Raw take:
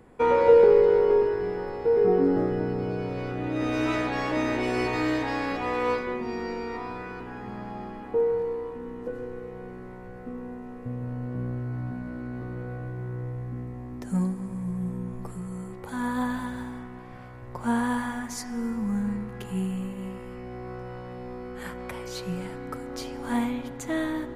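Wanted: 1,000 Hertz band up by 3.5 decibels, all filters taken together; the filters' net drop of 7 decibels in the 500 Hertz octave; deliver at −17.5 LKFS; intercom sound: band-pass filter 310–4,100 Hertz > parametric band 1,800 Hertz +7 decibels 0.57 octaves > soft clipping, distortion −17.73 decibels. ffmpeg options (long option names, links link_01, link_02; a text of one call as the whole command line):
ffmpeg -i in.wav -af "highpass=310,lowpass=4100,equalizer=frequency=500:width_type=o:gain=-8,equalizer=frequency=1000:width_type=o:gain=5.5,equalizer=frequency=1800:width_type=o:width=0.57:gain=7,asoftclip=threshold=-18.5dB,volume=14dB" out.wav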